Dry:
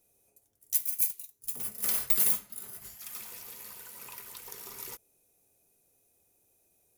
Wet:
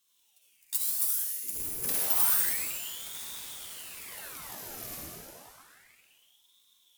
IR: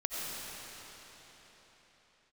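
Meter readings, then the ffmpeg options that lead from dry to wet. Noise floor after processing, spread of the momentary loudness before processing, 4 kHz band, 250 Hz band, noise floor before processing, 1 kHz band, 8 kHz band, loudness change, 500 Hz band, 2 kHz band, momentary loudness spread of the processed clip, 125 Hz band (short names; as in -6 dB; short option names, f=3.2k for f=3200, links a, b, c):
-68 dBFS, 20 LU, +5.5 dB, +2.5 dB, -71 dBFS, +6.5 dB, +2.5 dB, 0.0 dB, +4.0 dB, +5.5 dB, 18 LU, +3.5 dB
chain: -filter_complex "[1:a]atrim=start_sample=2205,asetrate=70560,aresample=44100[a];[0:a][a]afir=irnorm=-1:irlink=0,asubboost=boost=5:cutoff=250,aeval=exprs='val(0)*sin(2*PI*1900*n/s+1900*0.9/0.3*sin(2*PI*0.3*n/s))':c=same,volume=5dB"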